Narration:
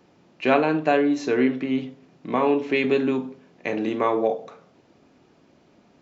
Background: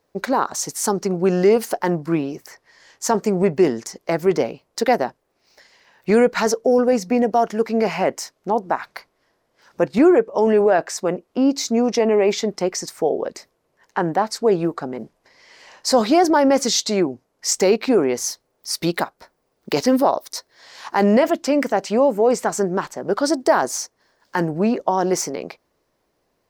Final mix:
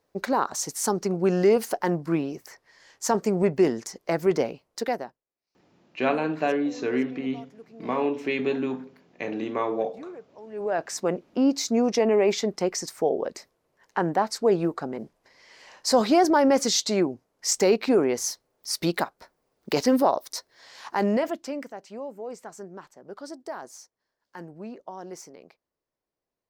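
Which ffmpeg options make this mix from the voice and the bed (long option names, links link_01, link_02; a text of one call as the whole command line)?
ffmpeg -i stem1.wav -i stem2.wav -filter_complex "[0:a]adelay=5550,volume=-5dB[link_01];[1:a]volume=19dB,afade=type=out:start_time=4.53:duration=0.71:silence=0.0707946,afade=type=in:start_time=10.51:duration=0.48:silence=0.0668344,afade=type=out:start_time=20.58:duration=1.15:silence=0.158489[link_02];[link_01][link_02]amix=inputs=2:normalize=0" out.wav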